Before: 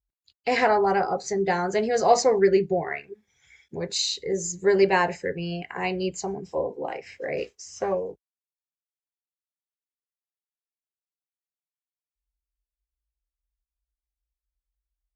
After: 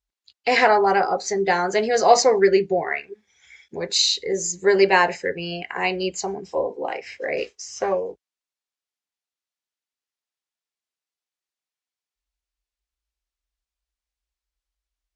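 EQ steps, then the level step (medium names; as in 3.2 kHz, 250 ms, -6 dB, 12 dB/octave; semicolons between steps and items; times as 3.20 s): low-pass 6.2 kHz 12 dB/octave; tilt EQ +1.5 dB/octave; peaking EQ 130 Hz -8.5 dB 0.75 oct; +5.0 dB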